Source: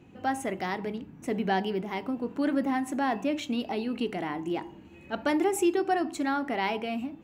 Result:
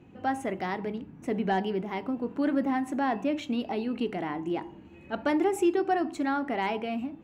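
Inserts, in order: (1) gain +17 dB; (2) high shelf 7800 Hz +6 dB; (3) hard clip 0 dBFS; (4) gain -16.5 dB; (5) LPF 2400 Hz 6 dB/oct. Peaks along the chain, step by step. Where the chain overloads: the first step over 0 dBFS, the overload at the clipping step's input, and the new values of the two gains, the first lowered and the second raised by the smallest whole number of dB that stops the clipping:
+3.5, +4.0, 0.0, -16.5, -16.5 dBFS; step 1, 4.0 dB; step 1 +13 dB, step 4 -12.5 dB

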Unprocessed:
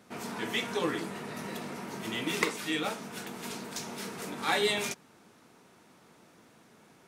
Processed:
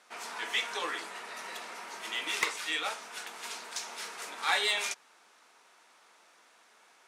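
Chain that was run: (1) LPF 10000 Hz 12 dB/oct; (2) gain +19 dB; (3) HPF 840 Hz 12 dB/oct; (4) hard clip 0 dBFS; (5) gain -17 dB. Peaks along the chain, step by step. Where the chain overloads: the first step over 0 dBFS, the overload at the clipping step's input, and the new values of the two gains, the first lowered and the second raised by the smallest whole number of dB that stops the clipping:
-10.5, +8.5, +8.0, 0.0, -17.0 dBFS; step 2, 8.0 dB; step 2 +11 dB, step 5 -9 dB

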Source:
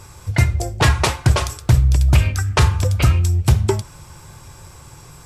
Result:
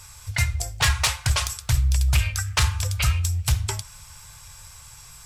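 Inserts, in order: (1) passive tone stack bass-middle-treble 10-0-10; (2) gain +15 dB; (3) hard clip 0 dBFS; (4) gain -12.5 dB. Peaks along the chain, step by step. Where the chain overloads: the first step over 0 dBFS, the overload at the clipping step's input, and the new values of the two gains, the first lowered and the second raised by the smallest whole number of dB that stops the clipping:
-8.5, +6.5, 0.0, -12.5 dBFS; step 2, 6.5 dB; step 2 +8 dB, step 4 -5.5 dB

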